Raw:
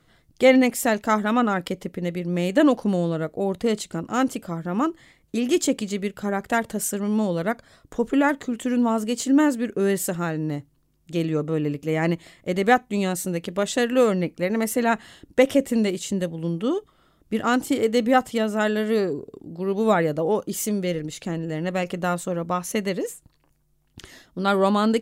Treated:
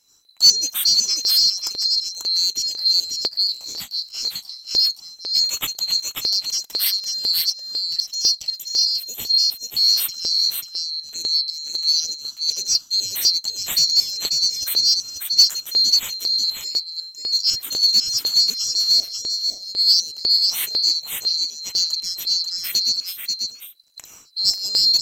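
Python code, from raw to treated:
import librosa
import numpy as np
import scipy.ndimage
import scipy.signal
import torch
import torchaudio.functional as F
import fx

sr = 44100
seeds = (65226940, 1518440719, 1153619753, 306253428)

p1 = fx.band_swap(x, sr, width_hz=4000)
p2 = fx.peak_eq(p1, sr, hz=1500.0, db=-11.5, octaves=2.6, at=(8.57, 9.64))
p3 = p2 + fx.echo_single(p2, sr, ms=539, db=-4.5, dry=0)
p4 = fx.filter_lfo_notch(p3, sr, shape='square', hz=2.0, low_hz=420.0, high_hz=4500.0, q=2.1)
p5 = fx.high_shelf(p4, sr, hz=3800.0, db=8.5)
p6 = np.clip(10.0 ** (10.5 / 20.0) * p5, -1.0, 1.0) / 10.0 ** (10.5 / 20.0)
p7 = p5 + (p6 * 10.0 ** (-6.0 / 20.0))
p8 = fx.detune_double(p7, sr, cents=53, at=(3.47, 4.71))
y = p8 * 10.0 ** (-4.5 / 20.0)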